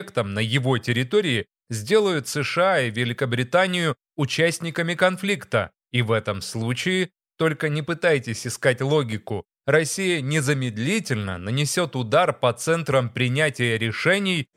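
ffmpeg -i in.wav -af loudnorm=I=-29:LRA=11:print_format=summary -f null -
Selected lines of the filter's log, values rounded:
Input Integrated:    -22.4 LUFS
Input True Peak:      -4.0 dBTP
Input LRA:             1.8 LU
Input Threshold:     -32.5 LUFS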